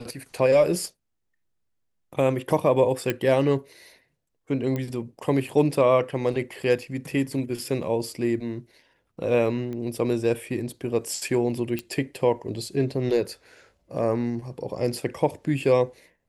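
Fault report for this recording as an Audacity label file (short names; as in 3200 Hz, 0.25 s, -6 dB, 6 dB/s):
3.100000	3.100000	pop -11 dBFS
4.760000	4.760000	pop -17 dBFS
9.730000	9.730000	pop -24 dBFS
11.790000	11.790000	pop -15 dBFS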